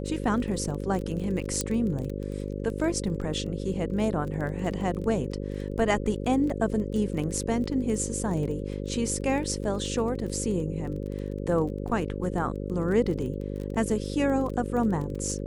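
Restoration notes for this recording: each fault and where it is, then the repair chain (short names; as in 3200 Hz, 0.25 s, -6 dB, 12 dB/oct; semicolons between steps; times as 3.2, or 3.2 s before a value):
buzz 50 Hz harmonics 11 -33 dBFS
crackle 21/s -33 dBFS
1.61 pop -12 dBFS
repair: de-click; de-hum 50 Hz, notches 11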